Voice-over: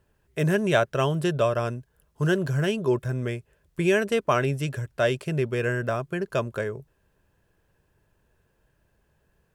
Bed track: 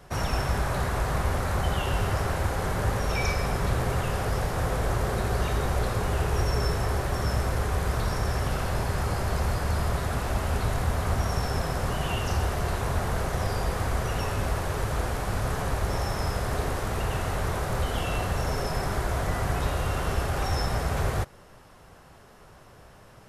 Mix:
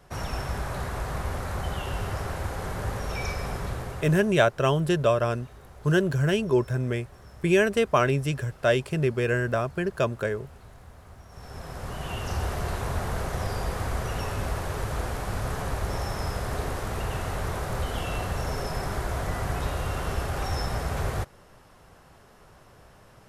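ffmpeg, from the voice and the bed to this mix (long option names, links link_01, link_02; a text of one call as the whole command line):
ffmpeg -i stem1.wav -i stem2.wav -filter_complex "[0:a]adelay=3650,volume=1dB[link_01];[1:a]volume=15.5dB,afade=type=out:start_time=3.53:duration=0.83:silence=0.133352,afade=type=in:start_time=11.29:duration=1.21:silence=0.1[link_02];[link_01][link_02]amix=inputs=2:normalize=0" out.wav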